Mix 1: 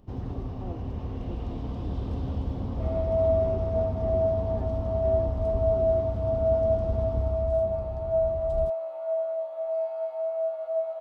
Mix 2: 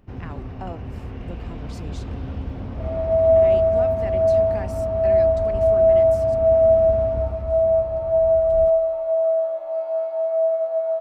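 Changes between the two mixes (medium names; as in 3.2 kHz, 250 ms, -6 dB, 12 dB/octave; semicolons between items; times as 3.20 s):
speech: remove band-pass filter 300 Hz, Q 2; first sound: add high-order bell 1.9 kHz +9 dB 1.2 oct; reverb: on, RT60 1.8 s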